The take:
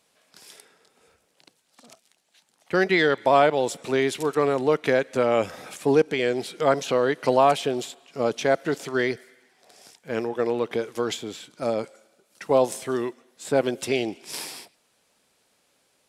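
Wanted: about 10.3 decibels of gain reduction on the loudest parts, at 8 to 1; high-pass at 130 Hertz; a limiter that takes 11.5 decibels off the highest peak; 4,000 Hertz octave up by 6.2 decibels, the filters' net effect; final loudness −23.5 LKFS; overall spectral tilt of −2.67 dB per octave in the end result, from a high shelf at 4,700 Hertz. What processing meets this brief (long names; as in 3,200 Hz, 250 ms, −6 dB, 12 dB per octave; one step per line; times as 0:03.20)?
high-pass filter 130 Hz
parametric band 4,000 Hz +6 dB
high-shelf EQ 4,700 Hz +4 dB
downward compressor 8 to 1, threshold −24 dBFS
level +10.5 dB
brickwall limiter −12.5 dBFS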